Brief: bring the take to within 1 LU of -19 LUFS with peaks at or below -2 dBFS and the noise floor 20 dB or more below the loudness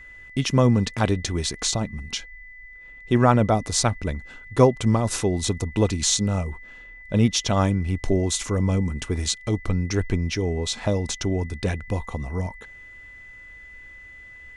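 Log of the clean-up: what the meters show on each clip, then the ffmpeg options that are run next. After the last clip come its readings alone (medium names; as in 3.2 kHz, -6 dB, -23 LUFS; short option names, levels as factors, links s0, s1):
steady tone 2 kHz; tone level -42 dBFS; loudness -23.5 LUFS; peak level -3.5 dBFS; loudness target -19.0 LUFS
-> -af "bandreject=f=2000:w=30"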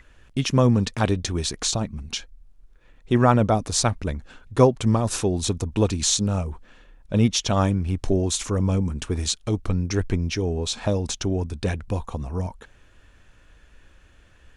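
steady tone not found; loudness -23.5 LUFS; peak level -3.0 dBFS; loudness target -19.0 LUFS
-> -af "volume=1.68,alimiter=limit=0.794:level=0:latency=1"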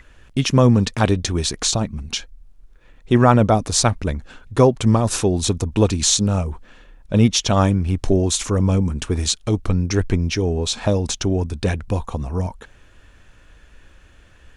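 loudness -19.5 LUFS; peak level -2.0 dBFS; noise floor -50 dBFS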